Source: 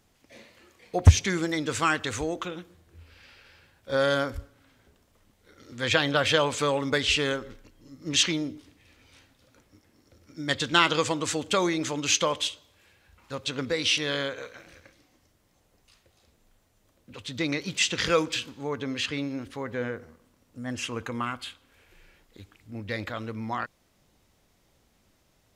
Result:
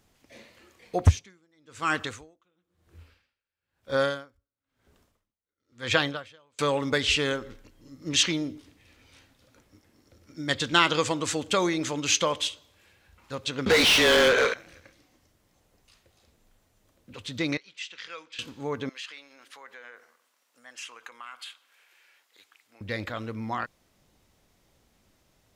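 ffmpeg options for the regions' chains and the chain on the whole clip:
-filter_complex "[0:a]asettb=1/sr,asplit=3[a][b][c];[a]atrim=end=0.984[d];[b]atrim=start=0.98:end=6.59,asetpts=PTS-STARTPTS,afade=t=in:d=0.004:c=qsin,afade=t=out:st=5.606:d=0.004:c=qsin,equalizer=f=1.2k:w=3.6:g=3,aeval=exprs='val(0)*pow(10,-39*(0.5-0.5*cos(2*PI*1*n/s))/20)':c=same[e];[c]atrim=start=6.586[f];[d][e]acrossfade=d=0.004:c1=hsin:c2=qsin[g];[g][f]acrossfade=d=0.004:c1=qsin:c2=hsin,asettb=1/sr,asplit=3[h][i][j];[h]atrim=end=13.664[k];[i]atrim=start=13.66:end=14.54,asetpts=PTS-STARTPTS,afade=t=in:d=0.004:c=qsin,afade=t=out:st=0.876:d=0.004:c=qsin,lowpass=10k,afreqshift=-23,asplit=2[l][m];[m]highpass=f=720:p=1,volume=32dB,asoftclip=type=tanh:threshold=-11.5dB[n];[l][n]amix=inputs=2:normalize=0,lowpass=f=3.6k:p=1,volume=-6dB[o];[j]atrim=start=14.536[p];[k][o]acrossfade=d=0.004:c1=hsin:c2=qsin[q];[q][p]acrossfade=d=0.004:c1=qsin:c2=hsin,asettb=1/sr,asplit=3[r][s][t];[r]atrim=end=17.574[u];[s]atrim=start=17.57:end=18.39,asetpts=PTS-STARTPTS,afade=t=in:d=0.004:c=qsin,afade=t=out:st=0.816:d=0.004:c=qsin,lowpass=2.5k,aderivative[v];[t]atrim=start=18.386[w];[u][v]acrossfade=d=0.004:c1=hsin:c2=qsin[x];[x][w]acrossfade=d=0.004:c1=qsin:c2=hsin,asettb=1/sr,asplit=3[y][z][aa];[y]atrim=end=18.894[ab];[z]atrim=start=18.89:end=22.81,asetpts=PTS-STARTPTS,afade=t=in:d=0.004:c=qsin,afade=t=out:st=3.916:d=0.004:c=qsin,acompressor=threshold=-36dB:ratio=4:attack=3.2:release=140:knee=1:detection=peak,highpass=970[ac];[aa]atrim=start=22.806[ad];[ab][ac]acrossfade=d=0.004:c1=hsin:c2=qsin[ae];[ae][ad]acrossfade=d=0.004:c1=qsin:c2=hsin"

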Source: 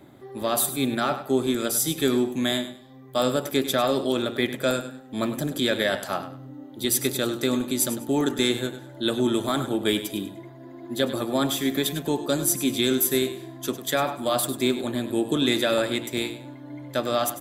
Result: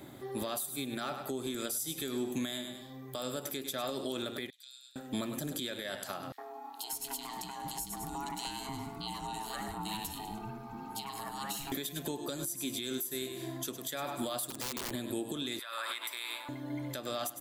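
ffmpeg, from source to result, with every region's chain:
-filter_complex "[0:a]asettb=1/sr,asplit=3[a][b][c];[a]atrim=end=4.504[d];[b]atrim=start=4.5:end=4.96,asetpts=PTS-STARTPTS,afade=t=in:d=0.004:c=qsin,afade=t=out:st=0.456:d=0.004:c=qsin,bandpass=f=4k:t=q:w=3.7,aderivative,acompressor=threshold=-54dB:ratio=5:attack=3.2:release=140:knee=1:detection=peak[e];[c]atrim=start=4.956[f];[d][e]acrossfade=d=0.004:c1=hsin:c2=qsin[g];[g][f]acrossfade=d=0.004:c1=qsin:c2=hsin,asettb=1/sr,asplit=3[h][i][j];[h]atrim=end=6.324[k];[i]atrim=start=6.32:end=11.72,asetpts=PTS-STARTPTS,afade=t=in:d=0.004:c=qsin,afade=t=out:st=5.396:d=0.004:c=qsin,acompressor=threshold=-34dB:ratio=4:attack=3.2:release=140:knee=1:detection=peak,aeval=exprs='val(0)*sin(2*PI*550*n/s)':c=same,acrossover=split=360|2500[l][m][n];[m]adelay=60[o];[l]adelay=600[p];[p][o][n]amix=inputs=3:normalize=0,atrim=end_sample=238140[q];[j]atrim=start=11.716[r];[k][q]acrossfade=d=0.004:c1=hsin:c2=qsin[s];[s][r]acrossfade=d=0.004:c1=qsin:c2=hsin,asettb=1/sr,asplit=3[t][u][v];[t]atrim=end=14.504[w];[u]atrim=start=14.5:end=14.91,asetpts=PTS-STARTPTS,afade=t=in:d=0.004:c=qsin,afade=t=out:st=0.406:d=0.004:c=qsin,highshelf=f=5.9k:g=-10.5,acompressor=threshold=-26dB:ratio=20:attack=3.2:release=140:knee=1:detection=peak,aeval=exprs='(mod(22.4*val(0)+1,2)-1)/22.4':c=same[x];[v]atrim=start=14.906[y];[w][x]acrossfade=d=0.004:c1=hsin:c2=qsin[z];[z][y]acrossfade=d=0.004:c1=qsin:c2=hsin,asettb=1/sr,asplit=3[aa][ab][ac];[aa]atrim=end=15.594[ad];[ab]atrim=start=15.59:end=16.49,asetpts=PTS-STARTPTS,afade=t=in:d=0.004:c=qsin,afade=t=out:st=0.896:d=0.004:c=qsin,highpass=f=1.1k:t=q:w=4,equalizer=f=6.7k:w=4:g=-13.5,acompressor=threshold=-33dB:ratio=16:attack=3.2:release=140:knee=1:detection=peak[ae];[ac]atrim=start=16.486[af];[ad][ae]acrossfade=d=0.004:c1=hsin:c2=qsin[ag];[ag][af]acrossfade=d=0.004:c1=qsin:c2=hsin,highshelf=f=3.2k:g=8.5,acompressor=threshold=-29dB:ratio=6,alimiter=level_in=1.5dB:limit=-24dB:level=0:latency=1:release=252,volume=-1.5dB"

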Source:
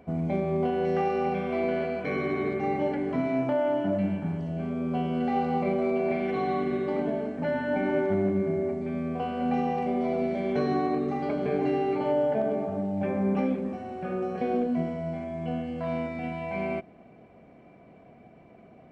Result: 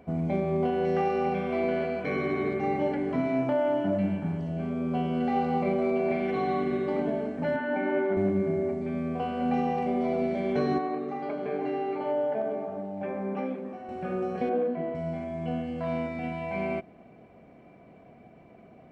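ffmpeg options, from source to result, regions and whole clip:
-filter_complex "[0:a]asettb=1/sr,asplit=3[a][b][c];[a]atrim=end=7.564[d];[b]atrim=start=7.56:end=8.17,asetpts=PTS-STARTPTS,afade=t=in:d=0.004:c=qsin,afade=t=out:st=0.606:d=0.004:c=qsin,highpass=250,lowpass=3.1k,equalizer=f=1.5k:t=o:w=0.21:g=3.5,asplit=2[e][f];[f]adelay=28,volume=-12.5dB[g];[e][g]amix=inputs=2:normalize=0,atrim=end_sample=26901[h];[c]atrim=start=8.166[i];[d][h]acrossfade=d=0.004:c1=hsin:c2=qsin[j];[j][i]acrossfade=d=0.004:c1=qsin:c2=hsin,asettb=1/sr,asplit=3[k][l][m];[k]atrim=end=10.784[n];[l]atrim=start=10.78:end=13.89,asetpts=PTS-STARTPTS,afade=t=in:d=0.004:c=qsin,afade=t=out:st=3.106:d=0.004:c=qsin,highpass=f=480:p=1,highshelf=f=3.3k:g=-11[o];[m]atrim=start=13.886[p];[n][o]acrossfade=d=0.004:c1=hsin:c2=qsin[q];[q][p]acrossfade=d=0.004:c1=qsin:c2=hsin,asettb=1/sr,asplit=3[r][s][t];[r]atrim=end=14.494[u];[s]atrim=start=14.49:end=14.95,asetpts=PTS-STARTPTS,afade=t=in:d=0.004:c=qsin,afade=t=out:st=0.456:d=0.004:c=qsin,highpass=200,lowpass=2.2k,asplit=2[v][w];[w]adelay=39,volume=-4dB[x];[v][x]amix=inputs=2:normalize=0,atrim=end_sample=20286[y];[t]atrim=start=14.946[z];[u][y]acrossfade=d=0.004:c1=hsin:c2=qsin[aa];[aa][z]acrossfade=d=0.004:c1=qsin:c2=hsin"

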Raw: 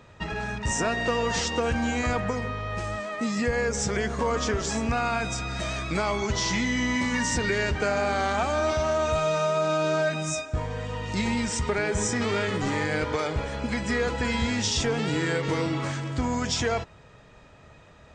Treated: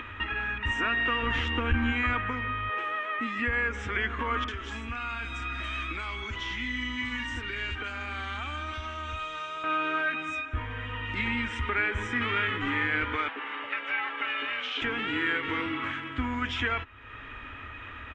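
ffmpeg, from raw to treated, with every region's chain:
-filter_complex "[0:a]asettb=1/sr,asplit=3[a][b][c];[a]atrim=end=1.224[d];[b]atrim=start=1.22:end=1.92,asetpts=PTS-STARTPTS,afade=t=in:d=0.004:c=qsin,afade=t=out:st=0.696:d=0.004:c=qsin,lowshelf=f=370:g=9.5,aeval=exprs='(tanh(4.47*val(0)+0.4)-tanh(0.4))/4.47':c=same[e];[c]atrim=start=1.916[f];[d][e]acrossfade=d=0.004:c1=hsin:c2=qsin[g];[g][f]acrossfade=d=0.004:c1=qsin:c2=hsin,asettb=1/sr,asplit=3[h][i][j];[h]atrim=end=2.694[k];[i]atrim=start=2.69:end=3.19,asetpts=PTS-STARTPTS,afade=t=in:d=0.004:c=qsin,afade=t=out:st=0.496:d=0.004:c=qsin,highpass=f=460:t=q:w=2.8,acrusher=bits=8:mode=log:mix=0:aa=0.000001[l];[j]atrim=start=3.186[m];[k][l]acrossfade=d=0.004:c1=hsin:c2=qsin[n];[n][m]acrossfade=d=0.004:c1=qsin:c2=hsin,asettb=1/sr,asplit=3[o][p][q];[o]atrim=end=4.444[r];[p]atrim=start=4.44:end=9.64,asetpts=PTS-STARTPTS,afade=t=in:d=0.004:c=qsin,afade=t=out:st=5.196:d=0.004:c=qsin,aemphasis=mode=production:type=cd,acrossover=split=100|3500[s][t][u];[s]acompressor=threshold=-35dB:ratio=4[v];[t]acompressor=threshold=-33dB:ratio=4[w];[u]acompressor=threshold=-32dB:ratio=4[x];[v][w][x]amix=inputs=3:normalize=0,acrossover=split=2000[y][z];[z]adelay=40[aa];[y][aa]amix=inputs=2:normalize=0,atrim=end_sample=229320[ab];[q]atrim=start=9.636[ac];[r][ab]acrossfade=d=0.004:c1=hsin:c2=qsin[ad];[ad][ac]acrossfade=d=0.004:c1=qsin:c2=hsin,asettb=1/sr,asplit=3[ae][af][ag];[ae]atrim=end=13.284[ah];[af]atrim=start=13.28:end=14.82,asetpts=PTS-STARTPTS,afade=t=in:d=0.004:c=qsin,afade=t=out:st=1.536:d=0.004:c=qsin,aeval=exprs='val(0)*sin(2*PI*350*n/s)':c=same,highpass=490,lowpass=4.7k[ai];[ag]atrim=start=14.816[aj];[ah][ai]acrossfade=d=0.004:c1=hsin:c2=qsin[ak];[ak][aj]acrossfade=d=0.004:c1=qsin:c2=hsin,bass=f=250:g=0,treble=f=4k:g=-9,acompressor=mode=upward:threshold=-28dB:ratio=2.5,firequalizer=gain_entry='entry(100,0);entry(150,-21);entry(260,2);entry(400,-6);entry(600,-12);entry(1200,6);entry(2200,8);entry(3200,8);entry(4500,-13)':delay=0.05:min_phase=1,volume=-3dB"

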